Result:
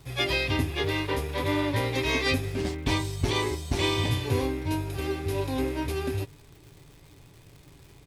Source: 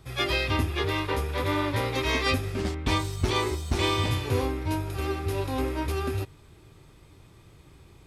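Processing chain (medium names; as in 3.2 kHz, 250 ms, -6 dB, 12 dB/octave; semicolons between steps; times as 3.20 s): peaking EQ 1.3 kHz -8 dB 0.36 oct; comb 7.1 ms, depth 33%; crackle 270 per s -44 dBFS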